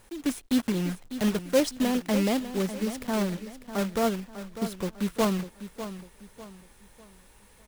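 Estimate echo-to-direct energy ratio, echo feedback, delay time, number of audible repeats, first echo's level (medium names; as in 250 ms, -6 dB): -11.5 dB, 36%, 598 ms, 3, -12.0 dB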